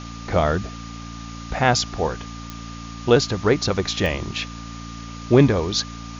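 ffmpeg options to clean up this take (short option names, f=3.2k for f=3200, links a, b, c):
-af "adeclick=t=4,bandreject=f=57.1:t=h:w=4,bandreject=f=114.2:t=h:w=4,bandreject=f=171.3:t=h:w=4,bandreject=f=228.4:t=h:w=4,bandreject=f=285.5:t=h:w=4,bandreject=f=1.2k:w=30,afwtdn=0.011"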